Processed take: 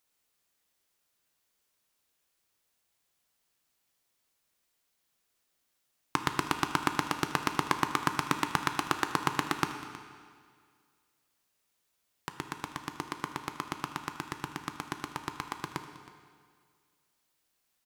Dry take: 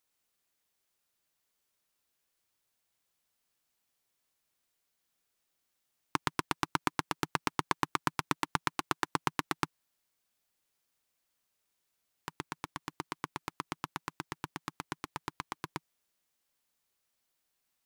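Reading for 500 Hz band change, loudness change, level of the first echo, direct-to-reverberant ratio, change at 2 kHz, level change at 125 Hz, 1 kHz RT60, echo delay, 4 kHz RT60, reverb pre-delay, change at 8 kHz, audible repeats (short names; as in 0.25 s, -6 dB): +3.5 dB, +3.5 dB, -18.5 dB, 6.0 dB, +3.5 dB, +3.5 dB, 1.9 s, 0.318 s, 1.8 s, 10 ms, +3.5 dB, 1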